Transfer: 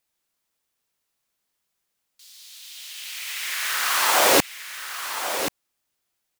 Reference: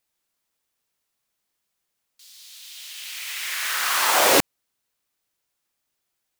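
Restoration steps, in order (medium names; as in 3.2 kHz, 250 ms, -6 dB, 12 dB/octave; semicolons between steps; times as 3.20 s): inverse comb 1081 ms -9.5 dB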